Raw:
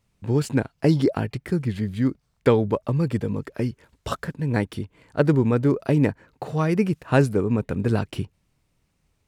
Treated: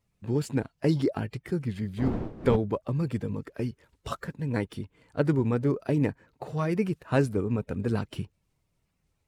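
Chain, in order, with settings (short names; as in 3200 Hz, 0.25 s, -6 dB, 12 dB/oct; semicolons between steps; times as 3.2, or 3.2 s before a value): bin magnitudes rounded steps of 15 dB; 1.97–2.55 wind noise 300 Hz -22 dBFS; gain -5.5 dB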